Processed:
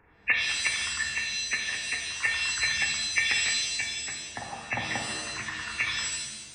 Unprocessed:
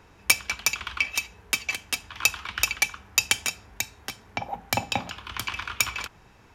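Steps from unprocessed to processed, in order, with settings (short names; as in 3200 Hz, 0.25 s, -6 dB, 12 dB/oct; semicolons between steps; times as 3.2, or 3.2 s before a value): nonlinear frequency compression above 1600 Hz 4:1; shimmer reverb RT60 1.1 s, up +7 st, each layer -2 dB, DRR 2 dB; gain -8 dB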